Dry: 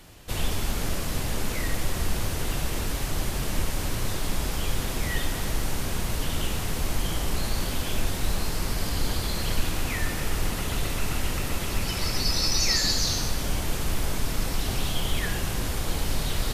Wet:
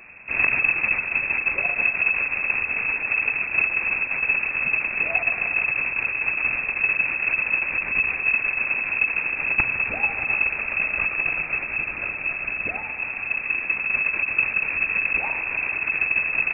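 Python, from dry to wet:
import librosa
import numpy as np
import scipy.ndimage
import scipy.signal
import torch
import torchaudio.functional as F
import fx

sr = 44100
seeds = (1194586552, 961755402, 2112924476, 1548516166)

y = fx.rider(x, sr, range_db=10, speed_s=2.0)
y = (np.mod(10.0 ** (11.5 / 20.0) * y + 1.0, 2.0) - 1.0) / 10.0 ** (11.5 / 20.0)
y = fx.echo_thinned(y, sr, ms=79, feedback_pct=78, hz=420.0, wet_db=-12.0)
y = fx.cheby_harmonics(y, sr, harmonics=(6, 8), levels_db=(-16, -23), full_scale_db=-10.0)
y = fx.freq_invert(y, sr, carrier_hz=2600)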